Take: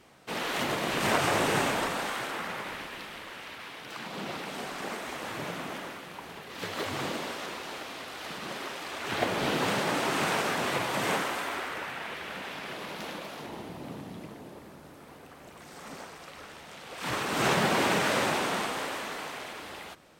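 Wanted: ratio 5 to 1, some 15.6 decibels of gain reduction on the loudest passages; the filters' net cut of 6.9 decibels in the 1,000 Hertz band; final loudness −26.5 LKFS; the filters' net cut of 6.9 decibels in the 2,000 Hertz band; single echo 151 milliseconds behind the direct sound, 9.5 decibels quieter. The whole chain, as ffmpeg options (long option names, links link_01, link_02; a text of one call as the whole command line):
ffmpeg -i in.wav -af "equalizer=frequency=1000:width_type=o:gain=-7.5,equalizer=frequency=2000:width_type=o:gain=-6.5,acompressor=threshold=-43dB:ratio=5,aecho=1:1:151:0.335,volume=18.5dB" out.wav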